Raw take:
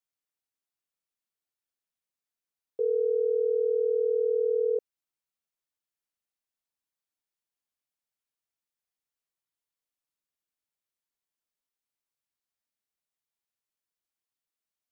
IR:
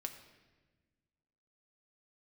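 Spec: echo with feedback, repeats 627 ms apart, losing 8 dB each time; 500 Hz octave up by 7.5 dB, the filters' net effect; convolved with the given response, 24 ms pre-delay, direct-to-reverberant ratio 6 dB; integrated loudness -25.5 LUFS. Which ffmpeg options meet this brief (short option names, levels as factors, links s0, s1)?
-filter_complex "[0:a]equalizer=f=500:t=o:g=8,aecho=1:1:627|1254|1881|2508|3135:0.398|0.159|0.0637|0.0255|0.0102,asplit=2[s0][s1];[1:a]atrim=start_sample=2205,adelay=24[s2];[s1][s2]afir=irnorm=-1:irlink=0,volume=0.631[s3];[s0][s3]amix=inputs=2:normalize=0,volume=0.473"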